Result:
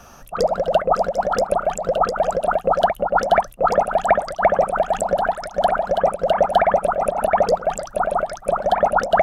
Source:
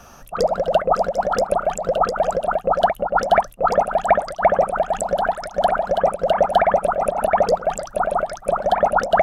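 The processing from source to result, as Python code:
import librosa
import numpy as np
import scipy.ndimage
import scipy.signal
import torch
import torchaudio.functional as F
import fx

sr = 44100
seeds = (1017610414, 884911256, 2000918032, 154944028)

y = fx.band_squash(x, sr, depth_pct=40, at=(2.43, 5.19))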